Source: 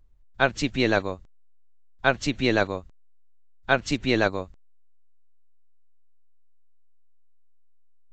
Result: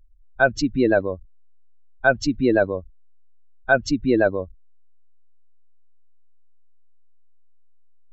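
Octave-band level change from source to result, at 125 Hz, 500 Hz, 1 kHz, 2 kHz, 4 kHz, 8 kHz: +0.5, +5.5, +2.0, +3.0, −4.5, +1.0 decibels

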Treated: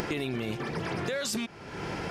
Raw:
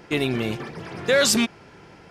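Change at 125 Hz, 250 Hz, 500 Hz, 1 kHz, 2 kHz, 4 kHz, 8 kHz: −4.0, −8.0, −10.0, −4.5, −9.5, −11.5, −12.5 decibels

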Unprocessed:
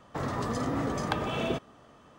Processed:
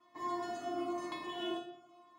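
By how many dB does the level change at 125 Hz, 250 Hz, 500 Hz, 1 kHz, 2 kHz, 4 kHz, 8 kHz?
−28.5, −8.0, −7.5, −5.0, −10.5, −5.0, −11.0 decibels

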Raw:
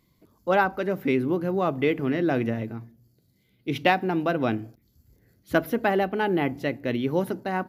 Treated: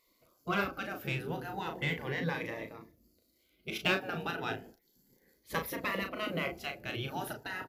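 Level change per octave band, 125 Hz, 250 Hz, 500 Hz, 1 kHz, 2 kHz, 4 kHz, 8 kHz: −8.5 dB, −14.5 dB, −14.0 dB, −11.0 dB, −5.5 dB, −1.5 dB, can't be measured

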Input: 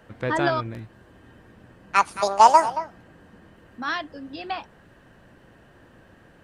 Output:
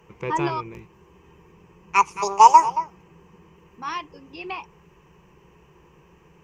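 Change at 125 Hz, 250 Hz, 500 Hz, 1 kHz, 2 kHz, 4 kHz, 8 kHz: can't be measured, −2.0 dB, −5.0 dB, +2.5 dB, −3.0 dB, −3.0 dB, +3.0 dB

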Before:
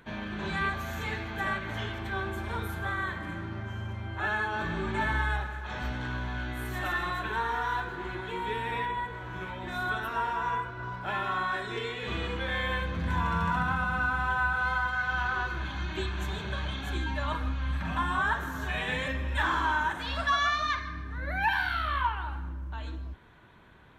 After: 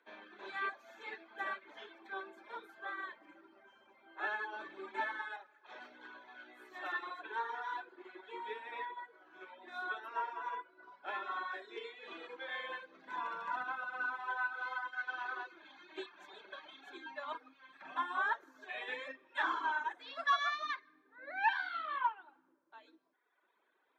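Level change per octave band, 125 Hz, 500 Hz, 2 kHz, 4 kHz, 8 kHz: below −40 dB, −11.0 dB, −9.0 dB, −11.0 dB, below −15 dB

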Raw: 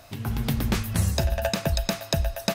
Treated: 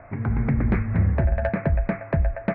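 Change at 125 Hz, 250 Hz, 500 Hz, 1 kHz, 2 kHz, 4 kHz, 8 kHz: +4.0 dB, +4.0 dB, +1.5 dB, +0.5 dB, +1.0 dB, below −25 dB, below −40 dB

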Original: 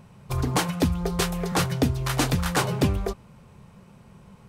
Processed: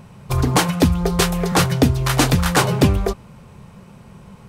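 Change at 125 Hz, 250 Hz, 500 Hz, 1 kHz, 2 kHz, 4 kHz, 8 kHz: +7.5, +7.5, +7.5, +7.5, +7.5, +7.5, +7.5 decibels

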